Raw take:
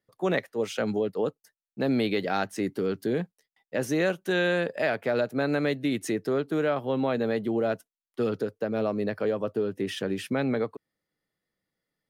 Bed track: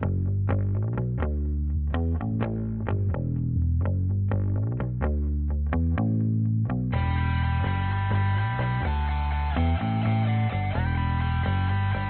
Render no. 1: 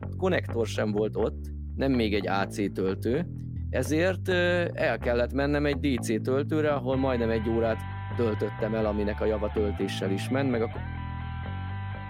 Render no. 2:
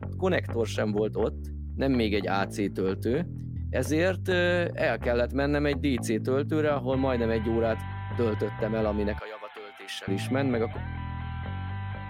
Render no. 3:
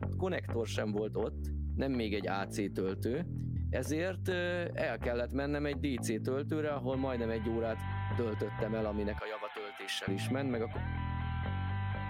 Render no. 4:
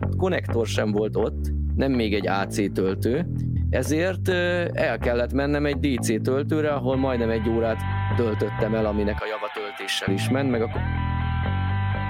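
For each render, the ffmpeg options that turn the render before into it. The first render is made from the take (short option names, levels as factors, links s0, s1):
-filter_complex "[1:a]volume=0.335[s0];[0:a][s0]amix=inputs=2:normalize=0"
-filter_complex "[0:a]asettb=1/sr,asplit=3[s0][s1][s2];[s0]atrim=end=9.194[s3];[s1]atrim=start=9.19:end=10.08,asetpts=PTS-STARTPTS,afade=t=in:d=0.004:c=qsin,afade=t=out:st=0.886:d=0.004:c=qsin,highpass=1100[s4];[s2]atrim=start=10.076[s5];[s3][s4]acrossfade=d=0.004:c1=hsin:c2=qsin[s6];[s6][s5]acrossfade=d=0.004:c1=qsin:c2=hsin"
-af "acompressor=threshold=0.0282:ratio=6"
-af "volume=3.76"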